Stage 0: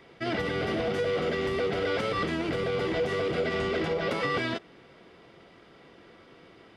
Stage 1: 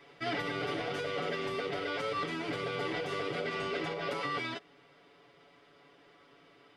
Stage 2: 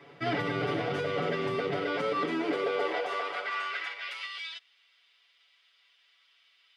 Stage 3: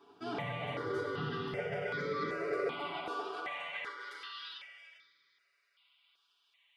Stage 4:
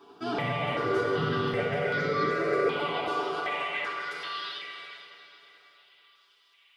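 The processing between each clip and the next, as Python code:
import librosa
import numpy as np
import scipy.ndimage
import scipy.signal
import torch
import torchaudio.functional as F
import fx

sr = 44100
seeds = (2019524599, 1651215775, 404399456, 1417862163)

y1 = fx.low_shelf(x, sr, hz=280.0, db=-8.5)
y1 = y1 + 0.97 * np.pad(y1, (int(7.0 * sr / 1000.0), 0))[:len(y1)]
y1 = fx.rider(y1, sr, range_db=10, speed_s=0.5)
y1 = y1 * librosa.db_to_amplitude(-6.0)
y2 = fx.high_shelf(y1, sr, hz=3400.0, db=-8.5)
y2 = fx.filter_sweep_highpass(y2, sr, from_hz=110.0, to_hz=3200.0, start_s=1.62, end_s=4.36, q=1.5)
y2 = y2 * librosa.db_to_amplitude(4.5)
y3 = y2 + 10.0 ** (-9.5 / 20.0) * np.pad(y2, (int(398 * sr / 1000.0), 0))[:len(y2)]
y3 = fx.room_shoebox(y3, sr, seeds[0], volume_m3=2200.0, walls='mixed', distance_m=1.3)
y3 = fx.phaser_held(y3, sr, hz=2.6, low_hz=550.0, high_hz=2800.0)
y3 = y3 * librosa.db_to_amplitude(-5.0)
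y4 = fx.echo_feedback(y3, sr, ms=433, feedback_pct=56, wet_db=-18.0)
y4 = fx.rev_plate(y4, sr, seeds[1], rt60_s=3.2, hf_ratio=0.95, predelay_ms=0, drr_db=5.5)
y4 = y4 * librosa.db_to_amplitude(7.5)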